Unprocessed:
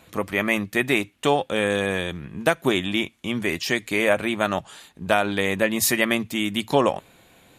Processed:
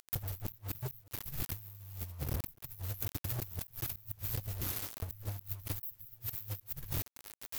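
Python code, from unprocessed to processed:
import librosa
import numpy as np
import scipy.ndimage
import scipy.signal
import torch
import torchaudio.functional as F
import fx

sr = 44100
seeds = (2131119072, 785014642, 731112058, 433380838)

y = fx.echo_alternate(x, sr, ms=101, hz=2200.0, feedback_pct=61, wet_db=-11.0)
y = fx.cheby_harmonics(y, sr, harmonics=(3, 4, 7, 8), levels_db=(-35, -28, -7, -31), full_scale_db=-2.5)
y = fx.low_shelf(y, sr, hz=160.0, db=-9.5)
y = fx.formant_shift(y, sr, semitones=6)
y = fx.filter_lfo_notch(y, sr, shape='saw_up', hz=3.4, low_hz=720.0, high_hz=2100.0, q=2.0)
y = scipy.signal.sosfilt(scipy.signal.cheby2(4, 50, [270.0, 7500.0], 'bandstop', fs=sr, output='sos'), y)
y = fx.peak_eq(y, sr, hz=72.0, db=-3.0, octaves=0.21)
y = y + 0.74 * np.pad(y, (int(2.4 * sr / 1000.0), 0))[:len(y)]
y = fx.echo_feedback(y, sr, ms=855, feedback_pct=29, wet_db=-23.0)
y = fx.quant_dither(y, sr, seeds[0], bits=8, dither='none')
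y = fx.gate_flip(y, sr, shuts_db=-19.0, range_db=-34)
y = fx.over_compress(y, sr, threshold_db=-46.0, ratio=-0.5)
y = y * 10.0 ** (7.5 / 20.0)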